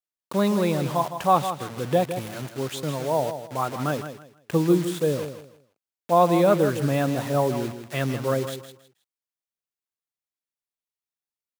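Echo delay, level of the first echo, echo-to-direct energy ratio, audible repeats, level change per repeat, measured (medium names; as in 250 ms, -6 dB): 160 ms, -10.0 dB, -9.5 dB, 3, -12.0 dB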